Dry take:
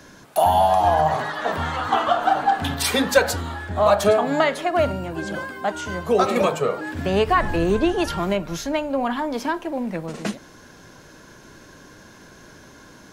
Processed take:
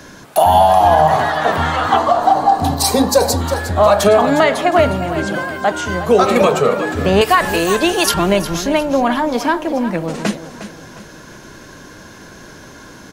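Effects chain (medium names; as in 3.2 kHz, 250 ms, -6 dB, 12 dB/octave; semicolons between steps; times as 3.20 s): 1.97–3.41 s: time-frequency box 1.2–3.8 kHz -13 dB; 7.21–8.14 s: RIAA curve recording; feedback delay 358 ms, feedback 40%, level -12.5 dB; loudness maximiser +9 dB; trim -1 dB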